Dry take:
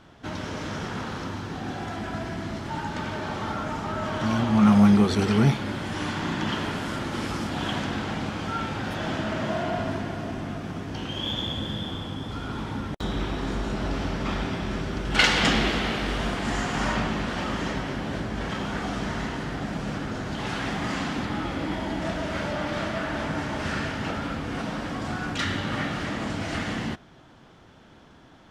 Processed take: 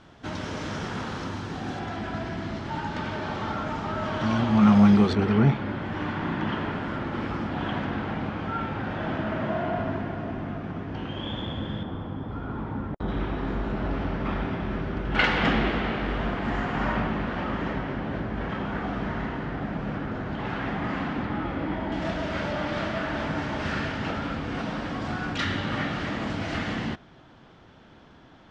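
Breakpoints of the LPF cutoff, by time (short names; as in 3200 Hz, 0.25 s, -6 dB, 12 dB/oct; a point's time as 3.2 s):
8500 Hz
from 1.79 s 4900 Hz
from 5.13 s 2200 Hz
from 11.83 s 1400 Hz
from 13.08 s 2200 Hz
from 21.92 s 4900 Hz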